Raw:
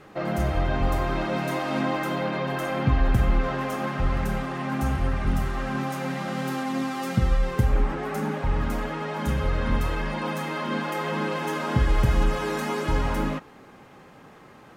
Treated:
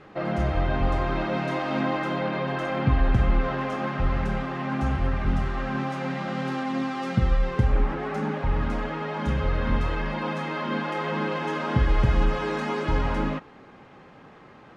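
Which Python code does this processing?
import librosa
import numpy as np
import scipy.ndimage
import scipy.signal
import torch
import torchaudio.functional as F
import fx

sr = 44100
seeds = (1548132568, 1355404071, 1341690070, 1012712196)

y = scipy.signal.sosfilt(scipy.signal.butter(2, 4400.0, 'lowpass', fs=sr, output='sos'), x)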